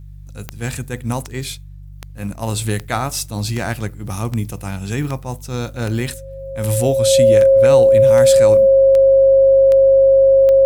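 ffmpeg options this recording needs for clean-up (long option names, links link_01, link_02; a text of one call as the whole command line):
ffmpeg -i in.wav -af "adeclick=threshold=4,bandreject=frequency=48.9:width_type=h:width=4,bandreject=frequency=97.8:width_type=h:width=4,bandreject=frequency=146.7:width_type=h:width=4,bandreject=frequency=540:width=30" out.wav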